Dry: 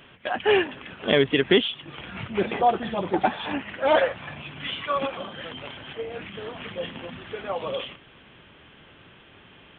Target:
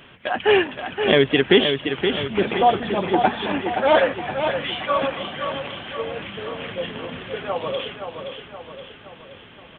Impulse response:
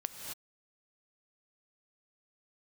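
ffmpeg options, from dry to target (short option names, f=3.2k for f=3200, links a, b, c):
-af "aecho=1:1:522|1044|1566|2088|2610|3132:0.447|0.232|0.121|0.0628|0.0327|0.017,volume=3.5dB"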